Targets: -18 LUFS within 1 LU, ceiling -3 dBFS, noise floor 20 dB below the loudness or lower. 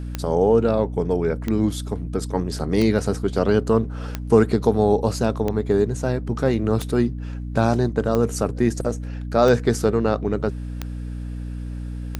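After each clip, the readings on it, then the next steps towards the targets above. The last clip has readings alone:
clicks found 10; hum 60 Hz; highest harmonic 300 Hz; hum level -27 dBFS; loudness -21.5 LUFS; peak level -1.5 dBFS; loudness target -18.0 LUFS
-> de-click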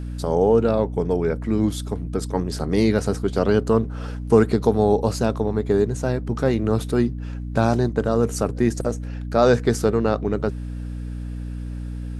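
clicks found 0; hum 60 Hz; highest harmonic 300 Hz; hum level -27 dBFS
-> hum notches 60/120/180/240/300 Hz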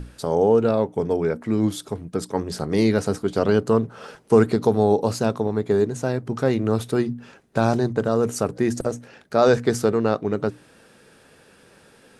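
hum not found; loudness -22.0 LUFS; peak level -2.5 dBFS; loudness target -18.0 LUFS
-> trim +4 dB; peak limiter -3 dBFS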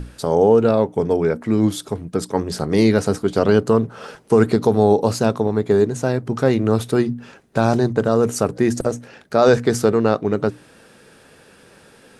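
loudness -18.5 LUFS; peak level -3.0 dBFS; noise floor -49 dBFS

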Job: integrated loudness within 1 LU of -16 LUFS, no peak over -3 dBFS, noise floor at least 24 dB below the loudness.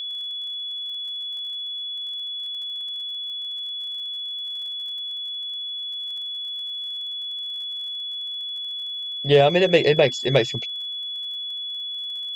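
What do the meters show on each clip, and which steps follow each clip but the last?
tick rate 43 per s; steady tone 3.4 kHz; tone level -28 dBFS; loudness -25.0 LUFS; peak level -4.5 dBFS; loudness target -16.0 LUFS
-> de-click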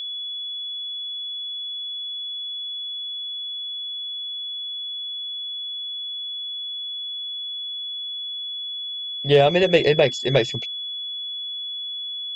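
tick rate 0 per s; steady tone 3.4 kHz; tone level -28 dBFS
-> band-stop 3.4 kHz, Q 30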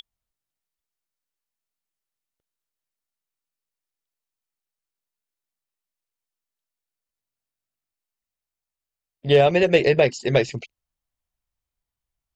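steady tone not found; loudness -18.5 LUFS; peak level -3.5 dBFS; loudness target -16.0 LUFS
-> trim +2.5 dB; peak limiter -3 dBFS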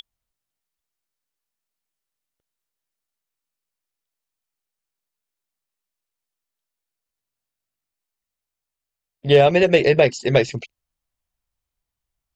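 loudness -16.5 LUFS; peak level -3.0 dBFS; noise floor -86 dBFS

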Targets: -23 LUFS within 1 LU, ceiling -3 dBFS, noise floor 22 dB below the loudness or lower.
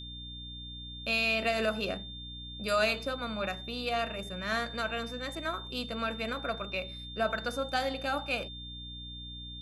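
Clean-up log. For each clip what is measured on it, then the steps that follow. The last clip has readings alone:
hum 60 Hz; highest harmonic 300 Hz; hum level -44 dBFS; steady tone 3.6 kHz; tone level -43 dBFS; loudness -33.5 LUFS; peak level -16.5 dBFS; loudness target -23.0 LUFS
-> hum notches 60/120/180/240/300 Hz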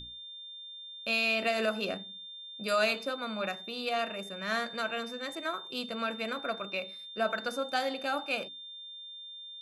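hum not found; steady tone 3.6 kHz; tone level -43 dBFS
-> band-stop 3.6 kHz, Q 30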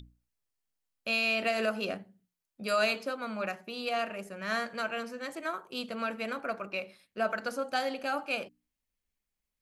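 steady tone not found; loudness -33.0 LUFS; peak level -17.0 dBFS; loudness target -23.0 LUFS
-> trim +10 dB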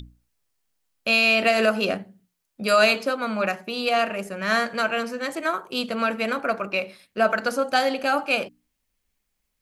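loudness -23.0 LUFS; peak level -7.0 dBFS; noise floor -77 dBFS

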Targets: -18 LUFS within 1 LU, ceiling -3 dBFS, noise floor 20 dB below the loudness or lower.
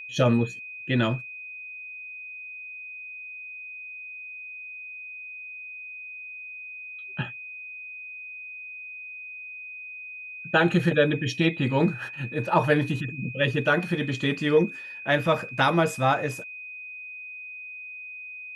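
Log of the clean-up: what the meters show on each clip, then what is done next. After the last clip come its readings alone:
steady tone 2.5 kHz; tone level -37 dBFS; loudness -28.0 LUFS; peak level -6.5 dBFS; loudness target -18.0 LUFS
-> band-stop 2.5 kHz, Q 30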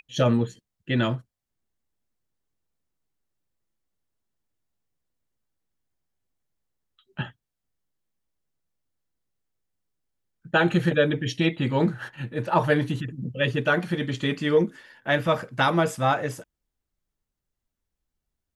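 steady tone not found; loudness -24.5 LUFS; peak level -7.0 dBFS; loudness target -18.0 LUFS
-> trim +6.5 dB; peak limiter -3 dBFS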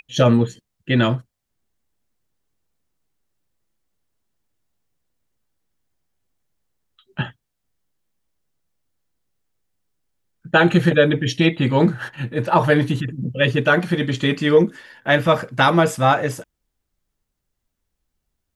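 loudness -18.5 LUFS; peak level -3.0 dBFS; noise floor -78 dBFS

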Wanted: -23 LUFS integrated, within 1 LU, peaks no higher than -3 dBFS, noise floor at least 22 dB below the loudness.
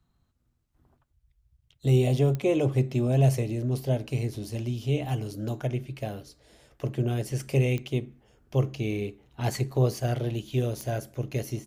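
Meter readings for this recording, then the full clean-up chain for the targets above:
clicks found 3; loudness -28.0 LUFS; peak level -11.5 dBFS; loudness target -23.0 LUFS
-> de-click; trim +5 dB

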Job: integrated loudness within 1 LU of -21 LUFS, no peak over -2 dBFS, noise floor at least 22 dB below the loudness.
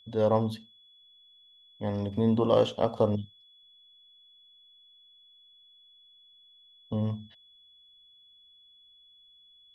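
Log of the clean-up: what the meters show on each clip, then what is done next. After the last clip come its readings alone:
steady tone 3.4 kHz; tone level -56 dBFS; loudness -28.0 LUFS; peak level -10.0 dBFS; loudness target -21.0 LUFS
-> band-stop 3.4 kHz, Q 30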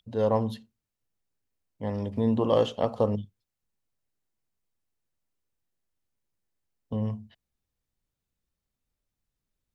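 steady tone not found; loudness -28.0 LUFS; peak level -10.0 dBFS; loudness target -21.0 LUFS
-> trim +7 dB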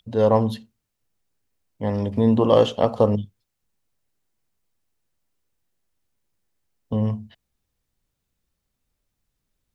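loudness -21.0 LUFS; peak level -3.0 dBFS; noise floor -79 dBFS

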